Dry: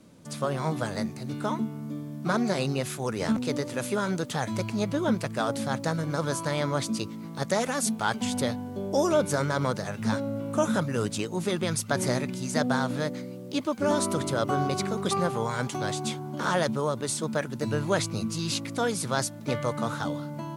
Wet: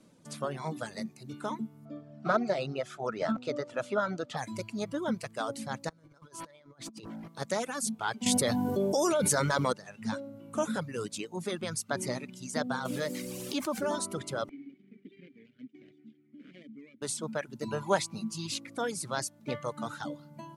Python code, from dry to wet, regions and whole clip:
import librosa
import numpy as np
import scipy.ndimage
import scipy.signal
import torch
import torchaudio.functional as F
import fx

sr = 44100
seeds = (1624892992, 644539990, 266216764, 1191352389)

y = fx.chain(x, sr, fx.lowpass(hz=4600.0, slope=12),
    fx.small_body(hz=(650.0, 1300.0), ring_ms=20, db=11), at=(1.85, 4.37))
y = fx.chain(y, sr, fx.high_shelf(hz=8600.0, db=-3.5),
    fx.over_compress(threshold_db=-36.0, ratio=-0.5),
    fx.clip_hard(threshold_db=-32.5), at=(5.89, 7.28))
y = fx.chain(y, sr, fx.high_shelf(hz=6600.0, db=8.0),
    fx.env_flatten(amount_pct=100), at=(8.26, 9.73))
y = fx.chain(y, sr, fx.low_shelf(hz=94.0, db=-9.0),
    fx.quant_dither(seeds[0], bits=8, dither='triangular'),
    fx.env_flatten(amount_pct=70), at=(12.85, 13.96))
y = fx.chain(y, sr, fx.median_filter(points=41),
    fx.vowel_filter(vowel='i'), at=(14.49, 17.02))
y = fx.chain(y, sr, fx.peak_eq(hz=870.0, db=9.5, octaves=0.5),
    fx.comb(ms=5.1, depth=0.46), at=(17.68, 18.47))
y = fx.dereverb_blind(y, sr, rt60_s=1.5)
y = scipy.signal.sosfilt(scipy.signal.cheby1(2, 1.0, 11000.0, 'lowpass', fs=sr, output='sos'), y)
y = fx.peak_eq(y, sr, hz=74.0, db=-11.5, octaves=0.92)
y = y * 10.0 ** (-4.0 / 20.0)